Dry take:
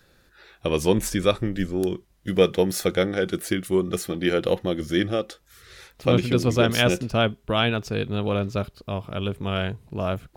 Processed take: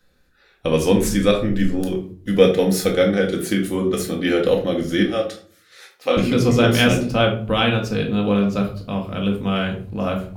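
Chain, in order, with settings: 5.03–6.17 HPF 490 Hz 12 dB/oct; gate -47 dBFS, range -9 dB; shoebox room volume 380 m³, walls furnished, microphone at 2 m; gain +1 dB

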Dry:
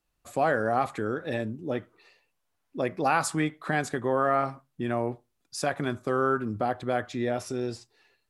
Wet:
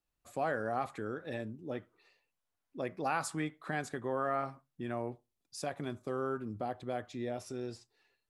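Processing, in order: 5.1–7.48 bell 1500 Hz -5.5 dB 0.84 oct; gain -9 dB

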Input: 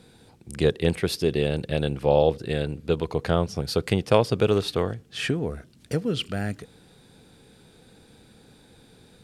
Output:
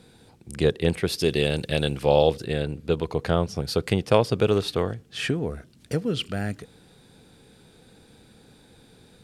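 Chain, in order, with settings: 1.18–2.45 high shelf 2100 Hz +9 dB

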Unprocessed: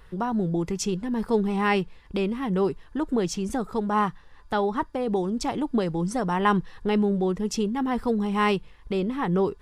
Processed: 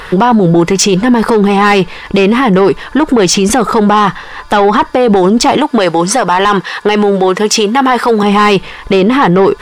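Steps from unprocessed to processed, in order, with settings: 5.57–8.23 HPF 600 Hz 6 dB/oct; overdrive pedal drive 19 dB, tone 4200 Hz, clips at -8.5 dBFS; maximiser +20.5 dB; gain -1 dB

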